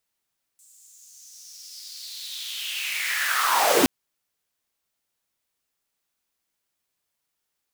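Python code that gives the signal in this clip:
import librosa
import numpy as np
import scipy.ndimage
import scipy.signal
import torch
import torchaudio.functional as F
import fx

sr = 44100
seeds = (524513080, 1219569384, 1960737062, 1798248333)

y = fx.riser_noise(sr, seeds[0], length_s=3.27, colour='pink', kind='highpass', start_hz=7700.0, end_hz=240.0, q=4.7, swell_db=35.5, law='linear')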